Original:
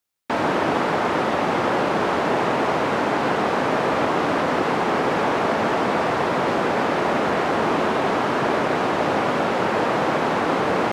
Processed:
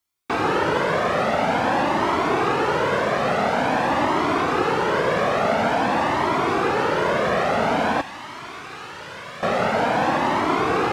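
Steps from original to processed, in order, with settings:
0:08.01–0:09.43: guitar amp tone stack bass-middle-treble 5-5-5
flanger whose copies keep moving one way rising 0.48 Hz
level +5 dB

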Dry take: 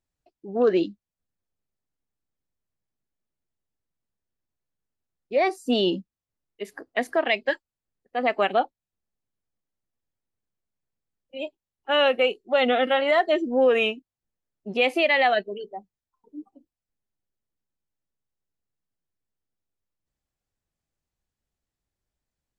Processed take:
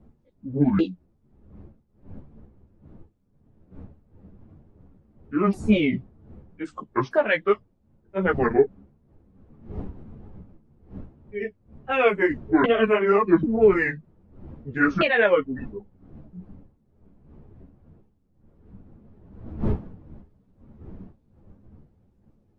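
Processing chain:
pitch shifter swept by a sawtooth −12 semitones, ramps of 790 ms
wind on the microphone 190 Hz −44 dBFS
high-shelf EQ 3,700 Hz −6.5 dB
string-ensemble chorus
level +6 dB

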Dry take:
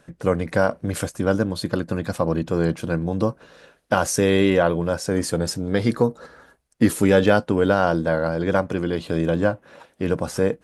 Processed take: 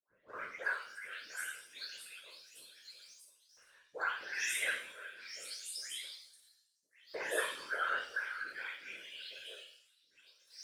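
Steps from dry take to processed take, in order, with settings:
every frequency bin delayed by itself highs late, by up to 420 ms
high-pass filter 160 Hz
flat-topped bell 870 Hz −9.5 dB 1.3 octaves
auto-filter high-pass saw up 0.28 Hz 980–6,000 Hz
leveller curve on the samples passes 1
resonators tuned to a chord F3 fifth, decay 0.61 s
random phases in short frames
level +3.5 dB

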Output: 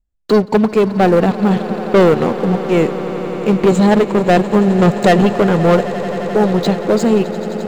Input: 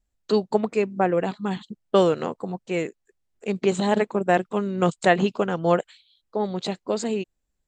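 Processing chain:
spectral tilt −2 dB per octave
leveller curve on the samples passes 3
on a send: echo that builds up and dies away 87 ms, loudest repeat 8, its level −18 dB

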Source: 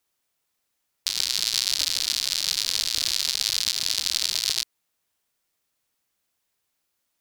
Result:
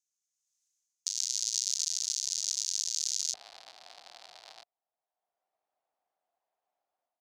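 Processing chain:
automatic gain control gain up to 10.5 dB
resonant band-pass 6,500 Hz, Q 5.8, from 0:03.34 720 Hz

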